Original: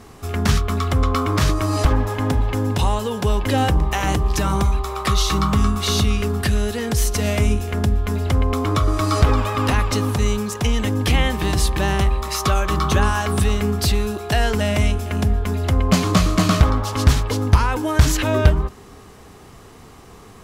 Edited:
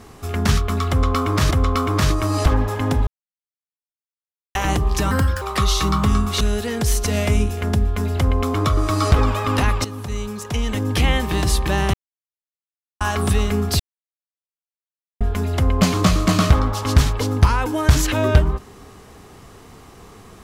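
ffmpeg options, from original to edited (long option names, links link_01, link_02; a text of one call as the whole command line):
ffmpeg -i in.wav -filter_complex "[0:a]asplit=12[link_01][link_02][link_03][link_04][link_05][link_06][link_07][link_08][link_09][link_10][link_11][link_12];[link_01]atrim=end=1.512[link_13];[link_02]atrim=start=0.898:end=2.46,asetpts=PTS-STARTPTS,afade=type=out:start_time=1.558:duration=0.004:curve=hsin[link_14];[link_03]atrim=start=2.46:end=3.94,asetpts=PTS-STARTPTS,volume=0[link_15];[link_04]atrim=start=3.94:end=4.504,asetpts=PTS-STARTPTS,afade=type=in:duration=0.004:curve=hsin[link_16];[link_05]atrim=start=4.5:end=4.91,asetpts=PTS-STARTPTS,asetrate=59094,aresample=44100,atrim=end_sample=13493,asetpts=PTS-STARTPTS[link_17];[link_06]atrim=start=4.906:end=5.902[link_18];[link_07]atrim=start=6.508:end=9.95,asetpts=PTS-STARTPTS,afade=type=out:start_time=3.438:duration=0.004:curve=hsin:silence=0.237137[link_19];[link_08]atrim=start=9.95:end=12.04,asetpts=PTS-STARTPTS,afade=type=in:duration=1.23:silence=0.237137,afade=type=out:start_time=2.086:duration=0.004:curve=hsin[link_20];[link_09]atrim=start=12.04:end=13.11,asetpts=PTS-STARTPTS,volume=0[link_21];[link_10]atrim=start=13.11:end=13.9,asetpts=PTS-STARTPTS,afade=type=in:duration=0.004:curve=hsin,afade=type=out:start_time=0.786:duration=0.004:curve=hsin[link_22];[link_11]atrim=start=13.9:end=15.31,asetpts=PTS-STARTPTS,volume=0[link_23];[link_12]atrim=start=15.31,asetpts=PTS-STARTPTS,afade=type=in:duration=0.004:curve=hsin[link_24];[link_14][link_15][link_16]concat=n=3:v=0:a=1[link_25];[link_13][link_25]acrossfade=duration=0.004:curve1=hsin:curve2=hsin[link_26];[link_26][link_17]acrossfade=duration=0.004:curve1=hsin:curve2=hsin[link_27];[link_27][link_18]acrossfade=duration=0.004:curve1=hsin:curve2=hsin[link_28];[link_19][link_20][link_21][link_22][link_23][link_24]concat=n=6:v=0:a=1[link_29];[link_28][link_29]acrossfade=duration=0.004:curve1=hsin:curve2=hsin" out.wav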